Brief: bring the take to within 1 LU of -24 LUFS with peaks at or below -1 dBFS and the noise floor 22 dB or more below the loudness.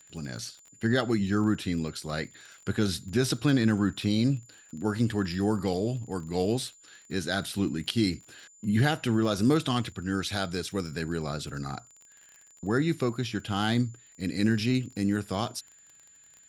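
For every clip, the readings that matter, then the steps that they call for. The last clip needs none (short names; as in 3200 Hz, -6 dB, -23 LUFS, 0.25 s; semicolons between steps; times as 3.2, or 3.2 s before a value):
ticks 28/s; steady tone 7100 Hz; tone level -54 dBFS; loudness -29.0 LUFS; peak -11.5 dBFS; loudness target -24.0 LUFS
-> de-click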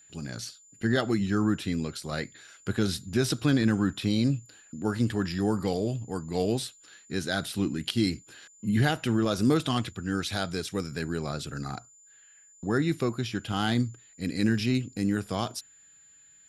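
ticks 0/s; steady tone 7100 Hz; tone level -54 dBFS
-> notch 7100 Hz, Q 30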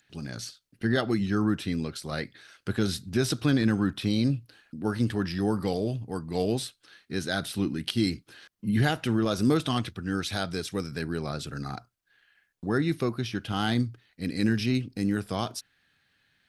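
steady tone none; loudness -29.0 LUFS; peak -11.5 dBFS; loudness target -24.0 LUFS
-> gain +5 dB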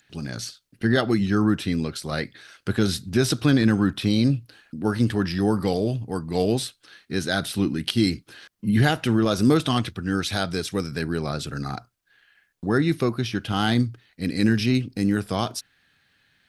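loudness -24.0 LUFS; peak -6.5 dBFS; noise floor -67 dBFS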